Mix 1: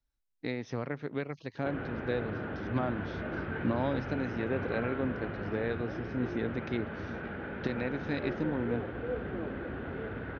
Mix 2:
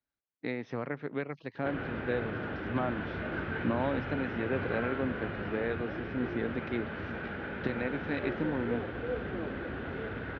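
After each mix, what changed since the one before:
speech: add band-pass 130–2200 Hz; master: add treble shelf 2.2 kHz +8 dB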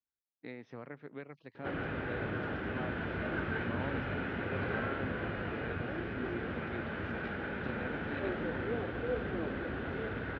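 speech -10.5 dB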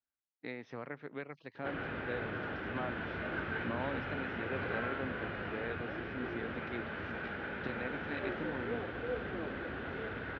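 speech +5.5 dB; master: add bass shelf 500 Hz -5.5 dB

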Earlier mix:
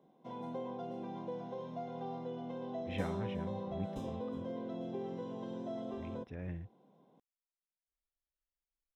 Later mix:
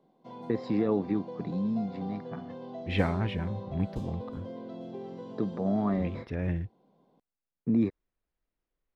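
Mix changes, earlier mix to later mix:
first voice: unmuted; second voice +11.5 dB; master: remove Butterworth band-stop 4.5 kHz, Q 5.8

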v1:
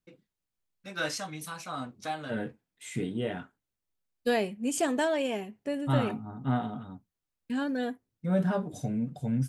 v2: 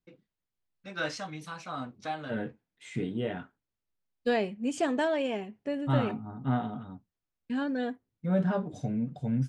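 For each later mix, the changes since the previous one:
master: add distance through air 100 m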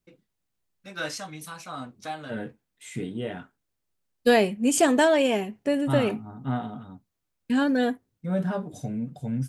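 second voice +8.0 dB; master: remove distance through air 100 m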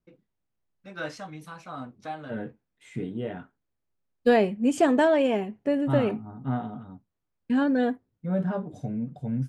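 master: add low-pass 1.5 kHz 6 dB/octave

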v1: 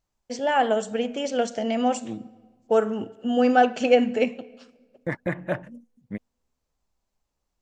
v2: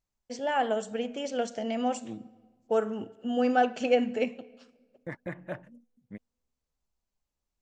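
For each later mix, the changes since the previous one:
first voice -6.0 dB; second voice -10.0 dB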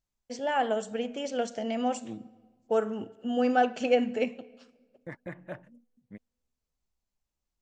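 second voice -3.0 dB

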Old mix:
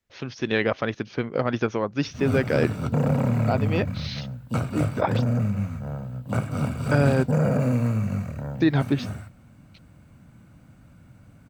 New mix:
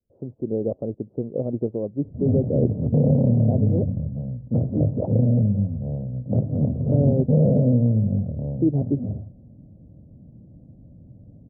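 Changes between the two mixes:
background +4.5 dB; master: add steep low-pass 600 Hz 36 dB/octave

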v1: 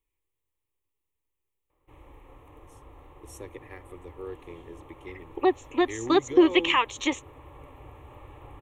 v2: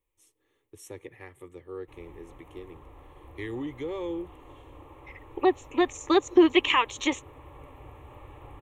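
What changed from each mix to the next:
first voice: entry -2.50 s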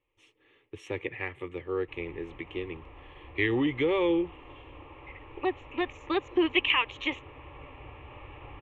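first voice +7.5 dB; second voice -7.5 dB; master: add resonant low-pass 2.7 kHz, resonance Q 3.1

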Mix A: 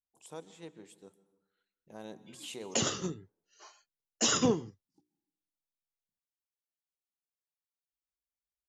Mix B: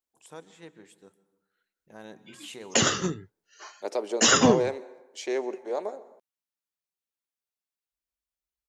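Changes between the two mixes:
second voice: unmuted; background +7.0 dB; master: add peaking EQ 1.7 kHz +7.5 dB 0.87 oct

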